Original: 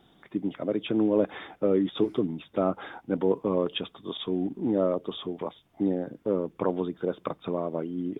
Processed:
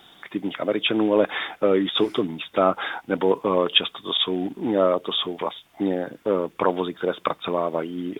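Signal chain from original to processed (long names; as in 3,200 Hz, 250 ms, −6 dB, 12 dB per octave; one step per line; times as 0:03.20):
tilt shelving filter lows −8.5 dB, about 650 Hz
level +7.5 dB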